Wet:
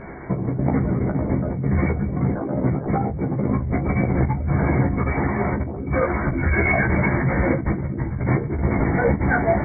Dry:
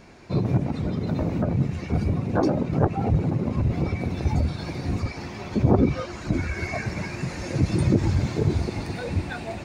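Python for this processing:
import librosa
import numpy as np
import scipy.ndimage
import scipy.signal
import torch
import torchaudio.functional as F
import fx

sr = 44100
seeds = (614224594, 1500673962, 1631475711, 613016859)

y = fx.over_compress(x, sr, threshold_db=-30.0, ratio=-1.0)
y = fx.brickwall_lowpass(y, sr, high_hz=2300.0)
y = fx.room_early_taps(y, sr, ms=(15, 39), db=(-3.0, -12.0))
y = y * librosa.db_to_amplitude(6.5)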